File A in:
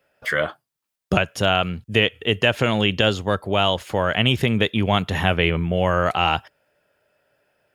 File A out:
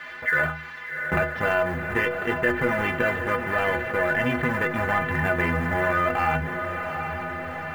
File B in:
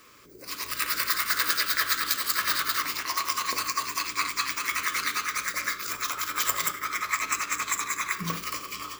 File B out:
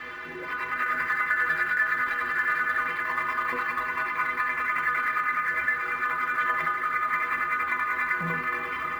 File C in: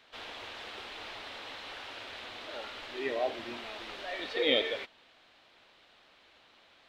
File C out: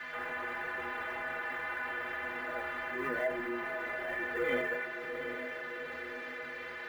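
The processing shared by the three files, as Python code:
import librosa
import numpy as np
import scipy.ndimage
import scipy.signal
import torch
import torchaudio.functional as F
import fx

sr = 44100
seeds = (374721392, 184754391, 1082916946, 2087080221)

p1 = fx.halfwave_hold(x, sr)
p2 = fx.low_shelf(p1, sr, hz=70.0, db=-6.0)
p3 = fx.rider(p2, sr, range_db=4, speed_s=2.0)
p4 = p2 + (p3 * librosa.db_to_amplitude(-2.0))
p5 = fx.dmg_noise_colour(p4, sr, seeds[0], colour='blue', level_db=-28.0)
p6 = fx.ladder_lowpass(p5, sr, hz=2000.0, resonance_pct=60)
p7 = fx.quant_float(p6, sr, bits=4)
p8 = fx.stiff_resonator(p7, sr, f0_hz=74.0, decay_s=0.38, stiffness=0.03)
p9 = fx.echo_diffused(p8, sr, ms=768, feedback_pct=49, wet_db=-14.0)
p10 = fx.env_flatten(p9, sr, amount_pct=50)
y = p10 * librosa.db_to_amplitude(3.0)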